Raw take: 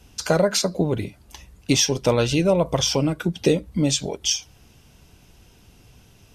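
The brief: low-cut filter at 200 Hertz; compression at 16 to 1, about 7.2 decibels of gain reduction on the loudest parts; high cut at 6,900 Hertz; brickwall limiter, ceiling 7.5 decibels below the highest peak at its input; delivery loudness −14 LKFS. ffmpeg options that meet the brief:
ffmpeg -i in.wav -af "highpass=200,lowpass=6900,acompressor=threshold=-21dB:ratio=16,volume=14.5dB,alimiter=limit=-2dB:level=0:latency=1" out.wav

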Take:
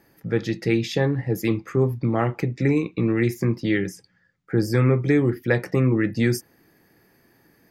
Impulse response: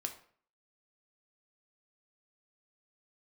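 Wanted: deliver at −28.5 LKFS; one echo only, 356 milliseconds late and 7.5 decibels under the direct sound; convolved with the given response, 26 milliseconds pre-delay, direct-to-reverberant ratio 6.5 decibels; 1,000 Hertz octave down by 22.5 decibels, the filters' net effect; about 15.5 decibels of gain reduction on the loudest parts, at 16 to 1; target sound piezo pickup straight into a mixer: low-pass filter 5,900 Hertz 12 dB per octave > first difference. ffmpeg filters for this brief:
-filter_complex "[0:a]equalizer=frequency=1000:width_type=o:gain=-8,acompressor=threshold=-31dB:ratio=16,aecho=1:1:356:0.422,asplit=2[link_01][link_02];[1:a]atrim=start_sample=2205,adelay=26[link_03];[link_02][link_03]afir=irnorm=-1:irlink=0,volume=-6dB[link_04];[link_01][link_04]amix=inputs=2:normalize=0,lowpass=5900,aderivative,volume=26dB"

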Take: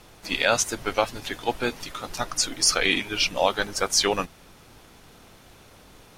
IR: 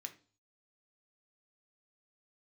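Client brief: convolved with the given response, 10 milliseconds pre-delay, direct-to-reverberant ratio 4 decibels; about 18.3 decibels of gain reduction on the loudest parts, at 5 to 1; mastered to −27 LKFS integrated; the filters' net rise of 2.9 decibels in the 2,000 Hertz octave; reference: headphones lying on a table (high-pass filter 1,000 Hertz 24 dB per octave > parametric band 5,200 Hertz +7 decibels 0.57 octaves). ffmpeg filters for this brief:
-filter_complex "[0:a]equalizer=frequency=2000:width_type=o:gain=3.5,acompressor=threshold=-37dB:ratio=5,asplit=2[link_01][link_02];[1:a]atrim=start_sample=2205,adelay=10[link_03];[link_02][link_03]afir=irnorm=-1:irlink=0,volume=0dB[link_04];[link_01][link_04]amix=inputs=2:normalize=0,highpass=frequency=1000:width=0.5412,highpass=frequency=1000:width=1.3066,equalizer=frequency=5200:width_type=o:width=0.57:gain=7,volume=8dB"

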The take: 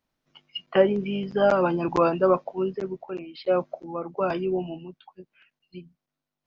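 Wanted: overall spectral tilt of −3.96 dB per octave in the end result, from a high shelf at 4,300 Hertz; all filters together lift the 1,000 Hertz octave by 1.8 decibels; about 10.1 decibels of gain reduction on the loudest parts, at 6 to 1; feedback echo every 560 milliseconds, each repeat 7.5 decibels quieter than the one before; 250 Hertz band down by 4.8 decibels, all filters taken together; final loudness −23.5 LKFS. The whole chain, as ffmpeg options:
ffmpeg -i in.wav -af "equalizer=frequency=250:width_type=o:gain=-9,equalizer=frequency=1000:width_type=o:gain=3,highshelf=frequency=4300:gain=-3.5,acompressor=threshold=-25dB:ratio=6,aecho=1:1:560|1120|1680|2240|2800:0.422|0.177|0.0744|0.0312|0.0131,volume=8.5dB" out.wav

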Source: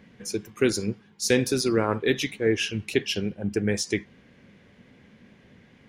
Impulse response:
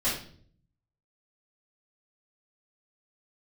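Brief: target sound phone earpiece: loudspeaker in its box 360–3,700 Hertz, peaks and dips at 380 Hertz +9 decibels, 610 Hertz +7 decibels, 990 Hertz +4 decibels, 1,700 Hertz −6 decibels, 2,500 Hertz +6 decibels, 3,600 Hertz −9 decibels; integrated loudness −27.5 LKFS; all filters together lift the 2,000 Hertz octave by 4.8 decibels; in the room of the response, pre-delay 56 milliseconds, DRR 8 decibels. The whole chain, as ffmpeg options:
-filter_complex "[0:a]equalizer=frequency=2000:width_type=o:gain=5.5,asplit=2[link_01][link_02];[1:a]atrim=start_sample=2205,adelay=56[link_03];[link_02][link_03]afir=irnorm=-1:irlink=0,volume=-17.5dB[link_04];[link_01][link_04]amix=inputs=2:normalize=0,highpass=360,equalizer=frequency=380:width_type=q:width=4:gain=9,equalizer=frequency=610:width_type=q:width=4:gain=7,equalizer=frequency=990:width_type=q:width=4:gain=4,equalizer=frequency=1700:width_type=q:width=4:gain=-6,equalizer=frequency=2500:width_type=q:width=4:gain=6,equalizer=frequency=3600:width_type=q:width=4:gain=-9,lowpass=frequency=3700:width=0.5412,lowpass=frequency=3700:width=1.3066,volume=-5dB"

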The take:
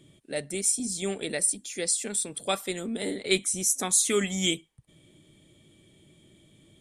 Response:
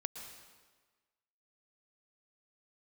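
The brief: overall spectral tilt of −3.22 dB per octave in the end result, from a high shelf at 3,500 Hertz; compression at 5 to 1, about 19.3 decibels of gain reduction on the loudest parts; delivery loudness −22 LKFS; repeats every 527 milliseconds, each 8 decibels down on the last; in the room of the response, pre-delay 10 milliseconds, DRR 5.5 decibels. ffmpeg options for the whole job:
-filter_complex "[0:a]highshelf=frequency=3500:gain=-6.5,acompressor=threshold=-43dB:ratio=5,aecho=1:1:527|1054|1581|2108|2635:0.398|0.159|0.0637|0.0255|0.0102,asplit=2[link_01][link_02];[1:a]atrim=start_sample=2205,adelay=10[link_03];[link_02][link_03]afir=irnorm=-1:irlink=0,volume=-4.5dB[link_04];[link_01][link_04]amix=inputs=2:normalize=0,volume=20.5dB"

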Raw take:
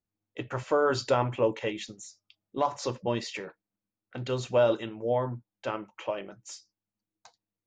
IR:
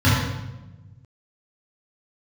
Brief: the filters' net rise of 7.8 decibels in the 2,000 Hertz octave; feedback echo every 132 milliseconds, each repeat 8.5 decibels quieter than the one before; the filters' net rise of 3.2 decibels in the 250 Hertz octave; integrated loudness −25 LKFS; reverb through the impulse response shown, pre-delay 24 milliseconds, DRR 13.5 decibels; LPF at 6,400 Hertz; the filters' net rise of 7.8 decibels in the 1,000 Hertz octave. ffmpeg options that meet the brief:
-filter_complex "[0:a]lowpass=6400,equalizer=frequency=250:width_type=o:gain=3.5,equalizer=frequency=1000:width_type=o:gain=7.5,equalizer=frequency=2000:width_type=o:gain=8,aecho=1:1:132|264|396|528:0.376|0.143|0.0543|0.0206,asplit=2[link_01][link_02];[1:a]atrim=start_sample=2205,adelay=24[link_03];[link_02][link_03]afir=irnorm=-1:irlink=0,volume=-34.5dB[link_04];[link_01][link_04]amix=inputs=2:normalize=0,volume=-0.5dB"

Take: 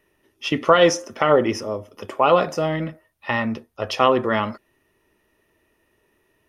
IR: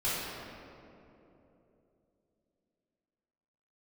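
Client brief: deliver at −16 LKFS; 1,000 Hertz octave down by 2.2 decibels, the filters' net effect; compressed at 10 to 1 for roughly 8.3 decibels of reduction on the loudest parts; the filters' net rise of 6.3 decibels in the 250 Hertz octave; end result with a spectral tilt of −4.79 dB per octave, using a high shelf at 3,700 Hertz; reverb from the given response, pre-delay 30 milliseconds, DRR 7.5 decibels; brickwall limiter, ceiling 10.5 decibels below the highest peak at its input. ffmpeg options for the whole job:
-filter_complex "[0:a]equalizer=frequency=250:width_type=o:gain=8.5,equalizer=frequency=1000:width_type=o:gain=-4,highshelf=frequency=3700:gain=7,acompressor=threshold=-17dB:ratio=10,alimiter=limit=-16.5dB:level=0:latency=1,asplit=2[link_01][link_02];[1:a]atrim=start_sample=2205,adelay=30[link_03];[link_02][link_03]afir=irnorm=-1:irlink=0,volume=-16.5dB[link_04];[link_01][link_04]amix=inputs=2:normalize=0,volume=11dB"

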